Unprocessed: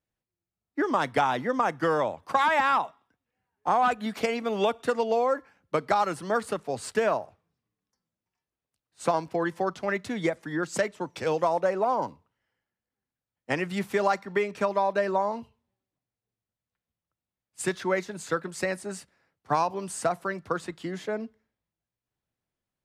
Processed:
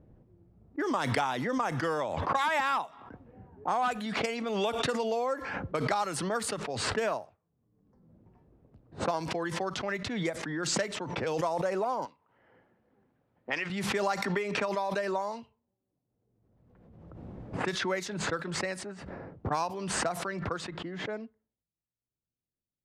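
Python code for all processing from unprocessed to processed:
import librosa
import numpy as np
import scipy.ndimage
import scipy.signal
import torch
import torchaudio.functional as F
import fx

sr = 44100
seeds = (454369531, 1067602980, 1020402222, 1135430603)

y = fx.chain(x, sr, fx.lowpass(hz=2900.0, slope=12),
    fx.tilt_eq(slope=4.5), at=(12.05, 13.7))
y = fx.chain(y, sr, fx.low_shelf(hz=220.0, db=-5.0),
    fx.band_squash(depth_pct=70), at=(14.24, 17.65))
y = fx.env_lowpass(y, sr, base_hz=420.0, full_db=-23.0)
y = fx.high_shelf(y, sr, hz=3500.0, db=8.5)
y = fx.pre_swell(y, sr, db_per_s=33.0)
y = F.gain(torch.from_numpy(y), -6.5).numpy()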